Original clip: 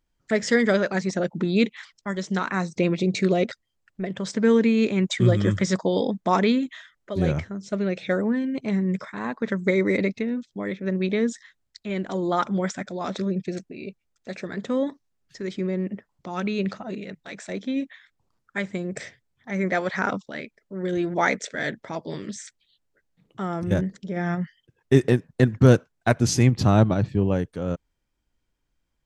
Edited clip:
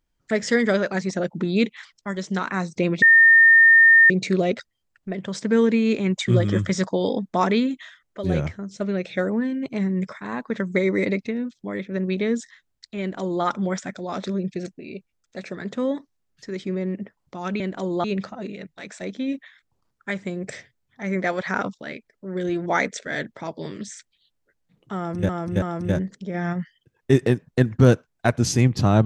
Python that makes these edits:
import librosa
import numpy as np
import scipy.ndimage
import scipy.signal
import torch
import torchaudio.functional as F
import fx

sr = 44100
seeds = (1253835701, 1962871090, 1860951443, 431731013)

y = fx.edit(x, sr, fx.insert_tone(at_s=3.02, length_s=1.08, hz=1820.0, db=-9.0),
    fx.duplicate(start_s=11.92, length_s=0.44, to_s=16.52),
    fx.repeat(start_s=23.44, length_s=0.33, count=3), tone=tone)